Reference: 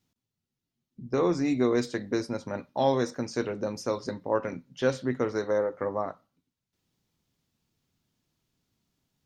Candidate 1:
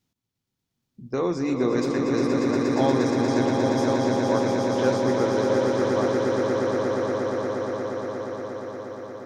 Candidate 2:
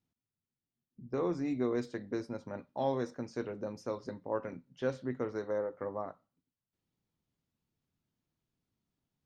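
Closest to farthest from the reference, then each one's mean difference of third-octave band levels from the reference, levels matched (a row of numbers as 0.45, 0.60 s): 2, 1; 1.5, 8.5 dB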